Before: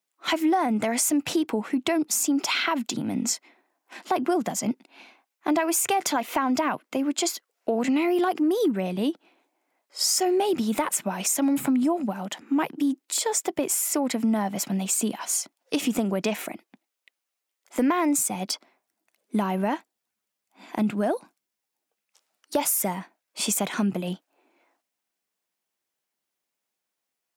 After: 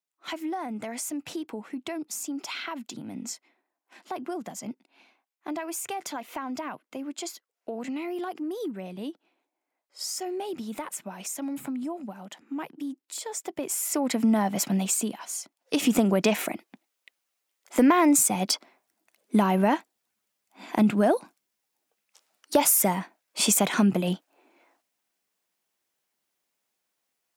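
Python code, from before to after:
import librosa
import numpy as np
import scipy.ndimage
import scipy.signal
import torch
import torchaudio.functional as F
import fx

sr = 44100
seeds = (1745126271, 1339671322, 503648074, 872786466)

y = fx.gain(x, sr, db=fx.line((13.28, -10.0), (14.25, 1.5), (14.8, 1.5), (15.33, -8.5), (15.92, 3.5)))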